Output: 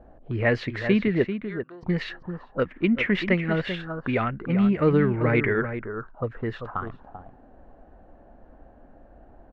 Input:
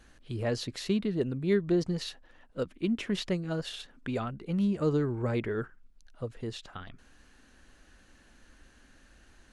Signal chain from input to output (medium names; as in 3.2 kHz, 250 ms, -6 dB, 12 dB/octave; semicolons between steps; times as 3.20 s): 1.24–1.83 s: differentiator; echo from a far wall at 67 m, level -9 dB; touch-sensitive low-pass 630–2100 Hz up, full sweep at -31.5 dBFS; trim +7 dB